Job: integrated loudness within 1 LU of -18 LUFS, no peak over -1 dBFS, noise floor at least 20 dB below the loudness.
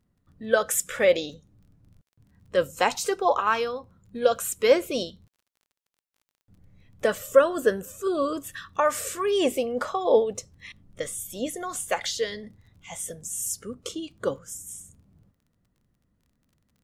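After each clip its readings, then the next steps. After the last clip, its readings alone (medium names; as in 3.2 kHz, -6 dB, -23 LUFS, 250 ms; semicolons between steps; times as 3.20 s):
tick rate 25 per s; loudness -26.0 LUFS; peak level -4.5 dBFS; loudness target -18.0 LUFS
-> de-click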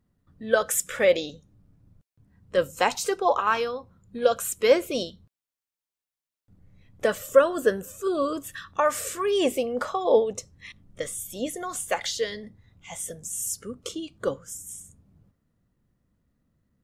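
tick rate 0.059 per s; loudness -26.0 LUFS; peak level -4.5 dBFS; loudness target -18.0 LUFS
-> trim +8 dB; peak limiter -1 dBFS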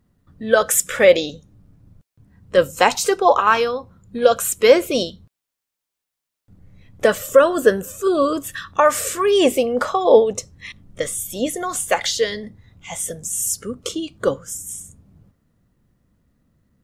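loudness -18.5 LUFS; peak level -1.0 dBFS; noise floor -83 dBFS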